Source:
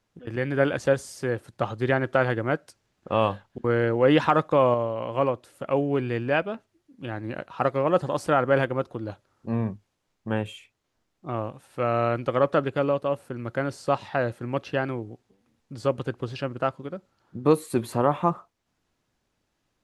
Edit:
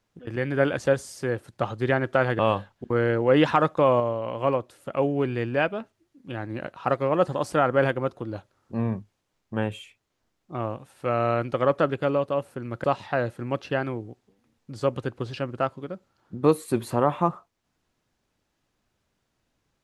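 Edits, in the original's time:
2.39–3.13 cut
13.58–13.86 cut

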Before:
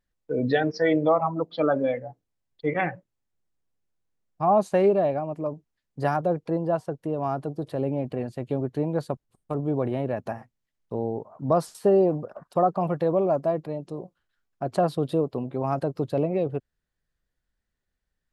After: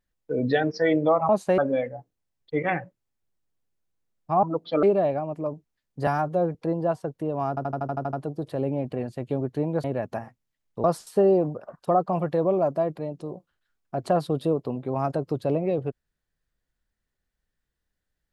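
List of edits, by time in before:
1.29–1.69 swap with 4.54–4.83
6.07–6.39 stretch 1.5×
7.33 stutter 0.08 s, 9 plays
9.04–9.98 cut
10.98–11.52 cut

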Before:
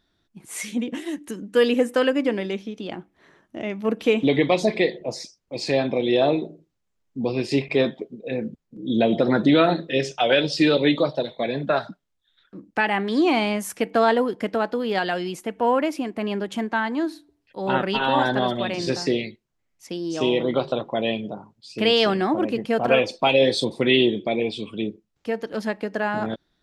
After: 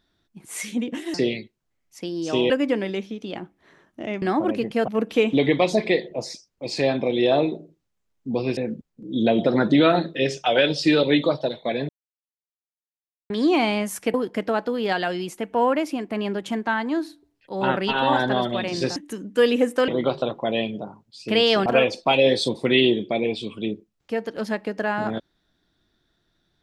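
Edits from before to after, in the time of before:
1.14–2.06 swap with 19.02–20.38
7.47–8.31 cut
11.63–13.04 mute
13.88–14.2 cut
22.16–22.82 move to 3.78

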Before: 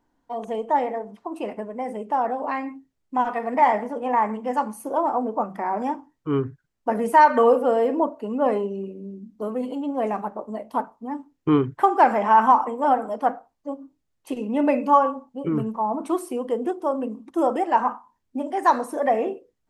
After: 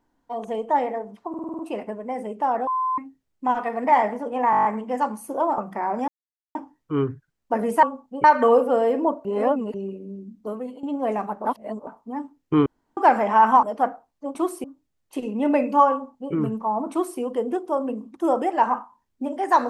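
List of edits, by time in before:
1.29 stutter 0.05 s, 7 plays
2.37–2.68 bleep 1030 Hz -20.5 dBFS
4.21 stutter 0.02 s, 8 plays
5.14–5.41 cut
5.91 insert silence 0.47 s
8.2–8.69 reverse
9.35–9.78 fade out, to -14.5 dB
10.4–10.82 reverse
11.61–11.92 room tone
12.58–13.06 cut
15.06–15.47 copy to 7.19
16.05–16.34 copy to 13.78

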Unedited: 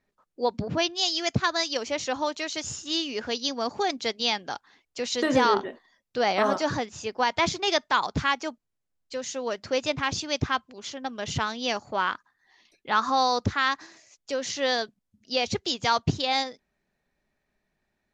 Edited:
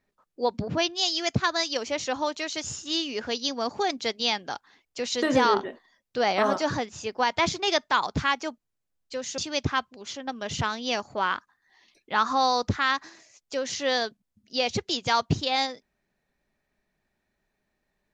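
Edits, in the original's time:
9.38–10.15 cut

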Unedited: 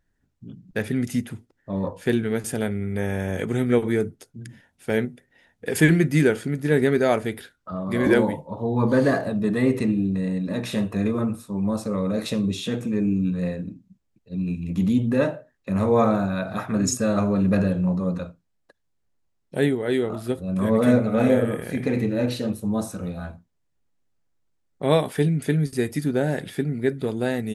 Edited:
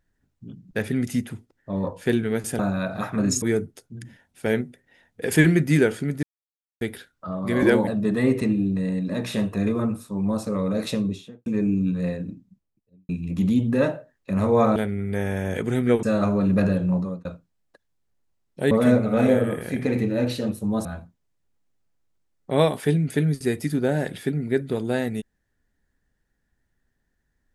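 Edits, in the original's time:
2.59–3.86 swap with 16.15–16.98
6.67–7.25 mute
8.31–9.26 cut
12.3–12.85 studio fade out
13.67–14.48 studio fade out
17.93–18.2 fade out
19.66–20.72 cut
22.86–23.17 cut

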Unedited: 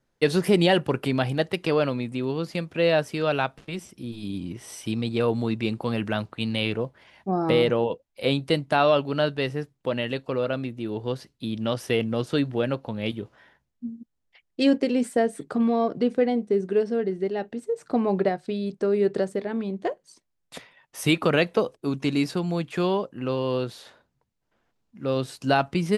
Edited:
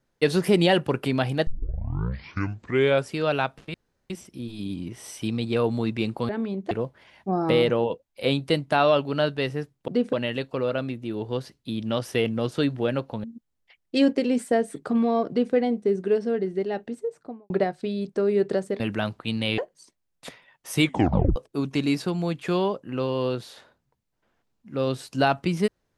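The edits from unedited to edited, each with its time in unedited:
1.47 tape start 1.68 s
3.74 insert room tone 0.36 s
5.93–6.71 swap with 19.45–19.87
12.99–13.89 cut
15.94–16.19 copy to 9.88
17.51–18.15 studio fade out
21.11 tape stop 0.54 s

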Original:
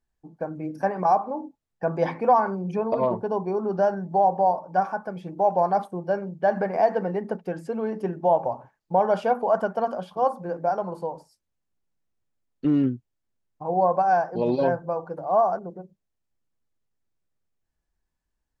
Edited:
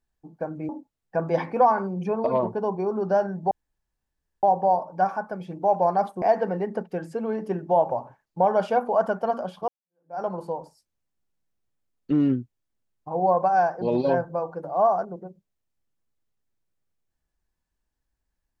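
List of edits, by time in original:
0.69–1.37 cut
4.19 insert room tone 0.92 s
5.98–6.76 cut
10.22–10.75 fade in exponential

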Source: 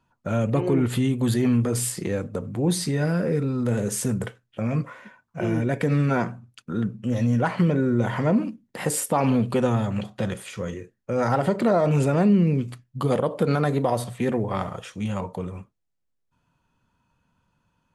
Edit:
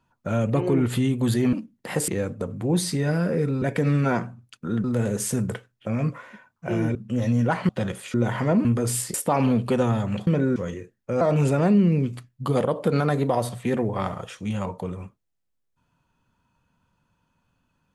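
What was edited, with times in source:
1.53–2.02 swap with 8.43–8.98
5.67–6.89 move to 3.56
7.63–7.92 swap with 10.11–10.56
11.21–11.76 cut

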